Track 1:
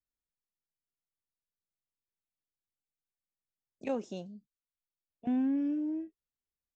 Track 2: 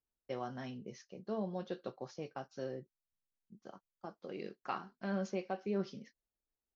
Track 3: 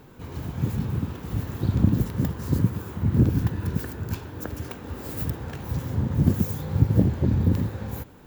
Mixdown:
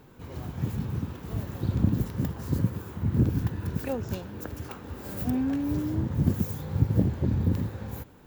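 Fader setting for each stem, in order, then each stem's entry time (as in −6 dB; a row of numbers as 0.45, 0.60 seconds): +2.0, −8.5, −4.0 decibels; 0.00, 0.00, 0.00 seconds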